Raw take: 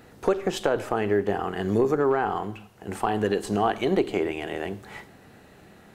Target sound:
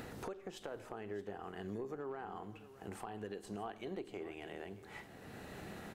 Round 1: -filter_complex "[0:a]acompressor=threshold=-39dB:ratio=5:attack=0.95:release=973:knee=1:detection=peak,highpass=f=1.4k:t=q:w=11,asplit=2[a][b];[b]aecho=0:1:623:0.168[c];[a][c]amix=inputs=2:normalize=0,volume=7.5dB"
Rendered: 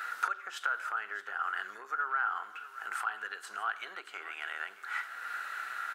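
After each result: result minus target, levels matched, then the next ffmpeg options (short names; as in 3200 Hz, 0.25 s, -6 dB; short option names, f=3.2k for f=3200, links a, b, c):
compressor: peak gain reduction -8 dB; 1000 Hz band +3.5 dB
-filter_complex "[0:a]acompressor=threshold=-49dB:ratio=5:attack=0.95:release=973:knee=1:detection=peak,highpass=f=1.4k:t=q:w=11,asplit=2[a][b];[b]aecho=0:1:623:0.168[c];[a][c]amix=inputs=2:normalize=0,volume=7.5dB"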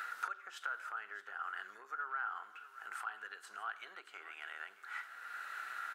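1000 Hz band +3.5 dB
-filter_complex "[0:a]acompressor=threshold=-49dB:ratio=5:attack=0.95:release=973:knee=1:detection=peak,asplit=2[a][b];[b]aecho=0:1:623:0.168[c];[a][c]amix=inputs=2:normalize=0,volume=7.5dB"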